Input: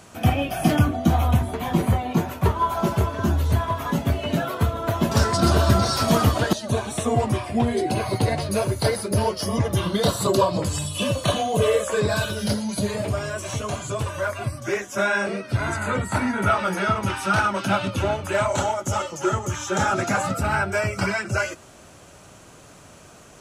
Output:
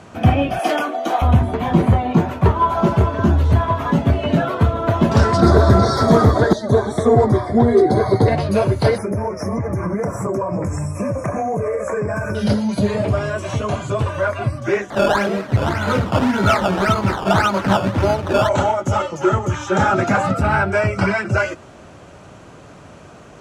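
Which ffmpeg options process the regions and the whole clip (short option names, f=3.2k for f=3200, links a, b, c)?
-filter_complex "[0:a]asettb=1/sr,asplit=3[a][b][c];[a]atrim=end=0.594[d];[b]atrim=start=0.59:end=1.22,asetpts=PTS-STARTPTS,afade=t=in:d=0.004:c=qsin,afade=t=out:st=0.626:d=0.004:c=qsin,highpass=f=390:w=0.5412,highpass=f=390:w=1.3066,highshelf=f=4.1k:g=6[e];[c]atrim=start=1.216[f];[d][e]acrossfade=d=0.004:c1=hsin:c2=qsin[g];[g][f]acrossfade=d=0.004:c1=qsin:c2=hsin,asettb=1/sr,asplit=3[h][i][j];[h]atrim=end=5.414[k];[i]atrim=start=5.41:end=8.28,asetpts=PTS-STARTPTS,afade=t=in:d=0.004:c=qsin,afade=t=out:st=2.866:d=0.004:c=qsin,asuperstop=centerf=2700:order=8:qfactor=2.3,equalizer=f=420:w=4.6:g=8.5[l];[j]atrim=start=8.276[m];[k][l]acrossfade=d=0.004:c1=hsin:c2=qsin[n];[n][m]acrossfade=d=0.004:c1=qsin:c2=hsin,asettb=1/sr,asplit=3[o][p][q];[o]atrim=end=8.984[r];[p]atrim=start=8.98:end=12.35,asetpts=PTS-STARTPTS,afade=t=in:d=0.004:c=qsin,afade=t=out:st=3.366:d=0.004:c=qsin,asuperstop=centerf=3600:order=20:qfactor=1.3,acompressor=threshold=-24dB:ratio=12:attack=3.2:release=140:knee=1:detection=peak[s];[q]atrim=start=12.346[t];[r][s]acrossfade=d=0.004:c1=hsin:c2=qsin[u];[u][t]acrossfade=d=0.004:c1=qsin:c2=hsin,asettb=1/sr,asplit=3[v][w][x];[v]atrim=end=14.904[y];[w]atrim=start=14.9:end=18.49,asetpts=PTS-STARTPTS,afade=t=in:d=0.004:c=qsin,afade=t=out:st=3.586:d=0.004:c=qsin,acrusher=samples=15:mix=1:aa=0.000001:lfo=1:lforange=15:lforate=1.8,aecho=1:1:225:0.106,atrim=end_sample=158319[z];[x]atrim=start=18.486[aa];[y][z]acrossfade=d=0.004:c1=hsin:c2=qsin[ab];[ab][aa]acrossfade=d=0.004:c1=qsin:c2=hsin,highpass=f=420:p=1,aemphasis=mode=reproduction:type=riaa,acontrast=73"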